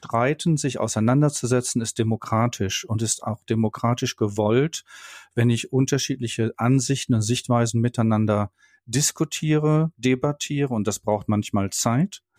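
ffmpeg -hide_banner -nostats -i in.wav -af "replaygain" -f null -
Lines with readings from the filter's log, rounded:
track_gain = +4.2 dB
track_peak = 0.312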